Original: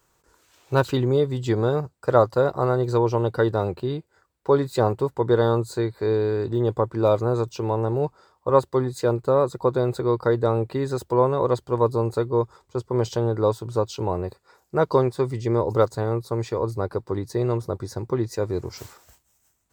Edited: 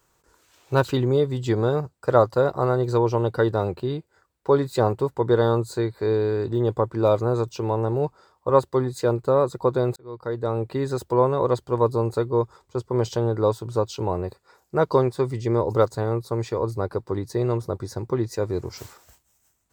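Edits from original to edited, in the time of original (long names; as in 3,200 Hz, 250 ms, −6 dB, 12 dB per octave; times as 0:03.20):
0:09.96–0:10.80: fade in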